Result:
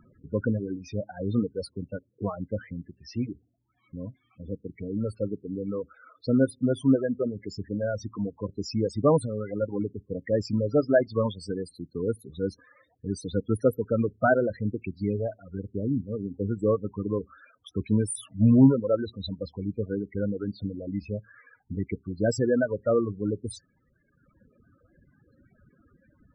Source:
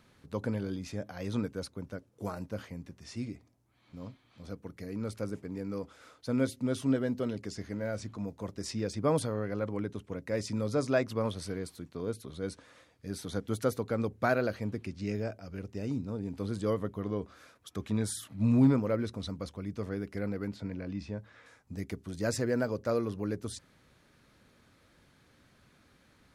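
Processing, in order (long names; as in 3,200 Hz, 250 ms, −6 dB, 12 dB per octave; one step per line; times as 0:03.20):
spectral peaks only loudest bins 16
reverb reduction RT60 1.5 s
level +8 dB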